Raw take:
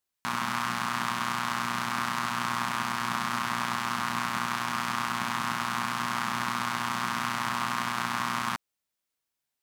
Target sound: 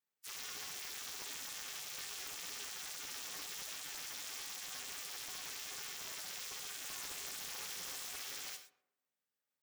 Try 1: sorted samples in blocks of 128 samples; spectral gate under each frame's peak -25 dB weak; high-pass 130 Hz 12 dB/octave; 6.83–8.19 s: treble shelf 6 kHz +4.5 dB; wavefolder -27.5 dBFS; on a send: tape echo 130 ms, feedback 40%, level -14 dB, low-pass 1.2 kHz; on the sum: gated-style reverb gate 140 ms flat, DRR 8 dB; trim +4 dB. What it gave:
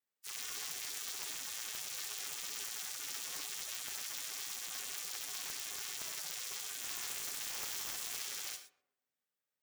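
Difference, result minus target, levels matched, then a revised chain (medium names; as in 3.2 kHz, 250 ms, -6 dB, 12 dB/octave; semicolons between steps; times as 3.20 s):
wavefolder: distortion -5 dB
sorted samples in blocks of 128 samples; spectral gate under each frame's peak -25 dB weak; high-pass 130 Hz 12 dB/octave; 6.83–8.19 s: treble shelf 6 kHz +4.5 dB; wavefolder -35.5 dBFS; on a send: tape echo 130 ms, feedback 40%, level -14 dB, low-pass 1.2 kHz; on the sum: gated-style reverb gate 140 ms flat, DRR 8 dB; trim +4 dB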